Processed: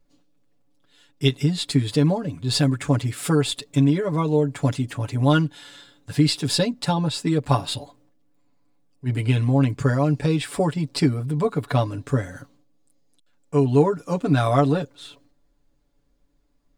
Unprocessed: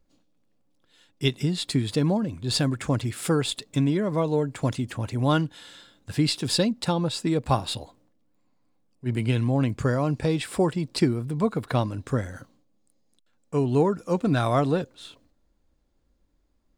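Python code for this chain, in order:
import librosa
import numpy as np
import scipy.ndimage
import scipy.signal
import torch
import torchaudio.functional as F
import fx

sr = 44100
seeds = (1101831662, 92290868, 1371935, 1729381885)

y = x + 0.87 * np.pad(x, (int(7.0 * sr / 1000.0), 0))[:len(x)]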